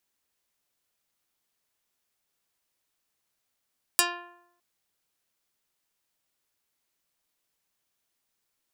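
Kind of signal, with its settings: plucked string F4, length 0.61 s, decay 0.79 s, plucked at 0.17, dark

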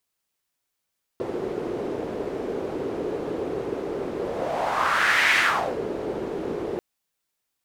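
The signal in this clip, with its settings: whoosh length 5.59 s, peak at 4.16 s, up 1.30 s, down 0.46 s, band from 400 Hz, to 2 kHz, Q 3.1, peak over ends 10 dB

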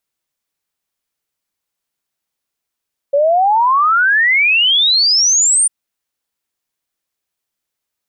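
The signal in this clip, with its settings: log sweep 550 Hz -> 9.3 kHz 2.55 s -9 dBFS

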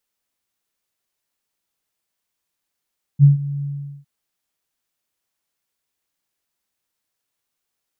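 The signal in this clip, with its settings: ADSR sine 142 Hz, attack 45 ms, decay 137 ms, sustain -17.5 dB, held 0.44 s, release 418 ms -4.5 dBFS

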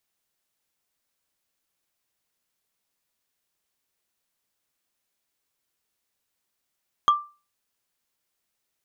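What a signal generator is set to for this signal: wood hit, lowest mode 1.18 kHz, decay 0.32 s, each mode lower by 11.5 dB, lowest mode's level -11 dB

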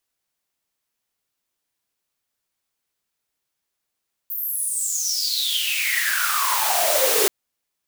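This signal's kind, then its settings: swept filtered noise white, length 2.98 s highpass, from 15 kHz, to 390 Hz, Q 12, exponential, gain ramp +16 dB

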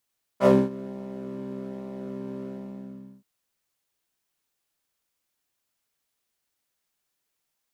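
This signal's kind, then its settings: synth patch with pulse-width modulation C3, oscillator 2 square, interval +7 st, detune 17 cents, oscillator 2 level -1 dB, noise -2 dB, filter bandpass, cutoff 210 Hz, Q 2.2, filter envelope 2 oct, filter decay 0.15 s, filter sustain 35%, attack 58 ms, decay 0.23 s, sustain -22 dB, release 0.79 s, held 2.04 s, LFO 1.2 Hz, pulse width 14%, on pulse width 6%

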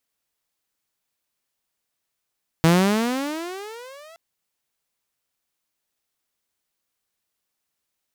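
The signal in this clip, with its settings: gliding synth tone saw, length 1.52 s, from 160 Hz, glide +25 st, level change -31.5 dB, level -9.5 dB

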